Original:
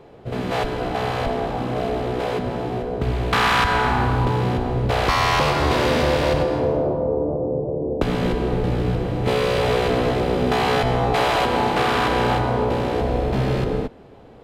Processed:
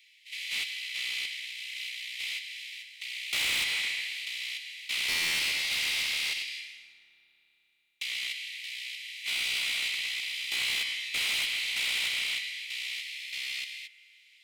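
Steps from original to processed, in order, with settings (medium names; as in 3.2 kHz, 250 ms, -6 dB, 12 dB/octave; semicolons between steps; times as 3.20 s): steep high-pass 2 kHz 96 dB/octave; saturation -30.5 dBFS, distortion -8 dB; spring tank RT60 3.9 s, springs 30 ms, chirp 50 ms, DRR 19.5 dB; trim +4.5 dB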